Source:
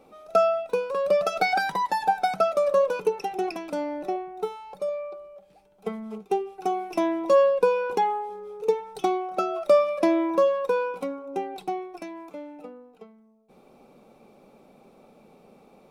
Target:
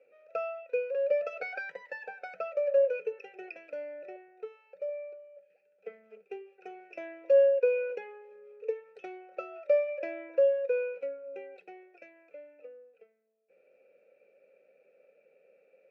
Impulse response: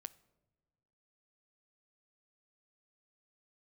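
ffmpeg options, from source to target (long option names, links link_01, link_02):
-filter_complex "[0:a]asplit=3[link_01][link_02][link_03];[link_01]bandpass=frequency=530:width_type=q:width=8,volume=0dB[link_04];[link_02]bandpass=frequency=1840:width_type=q:width=8,volume=-6dB[link_05];[link_03]bandpass=frequency=2480:width_type=q:width=8,volume=-9dB[link_06];[link_04][link_05][link_06]amix=inputs=3:normalize=0,highpass=150,equalizer=frequency=230:width_type=q:width=4:gain=-9,equalizer=frequency=320:width_type=q:width=4:gain=-6,equalizer=frequency=820:width_type=q:width=4:gain=-7,equalizer=frequency=1400:width_type=q:width=4:gain=10,equalizer=frequency=2400:width_type=q:width=4:gain=8,equalizer=frequency=3500:width_type=q:width=4:gain=-10,lowpass=frequency=7800:width=0.5412,lowpass=frequency=7800:width=1.3066"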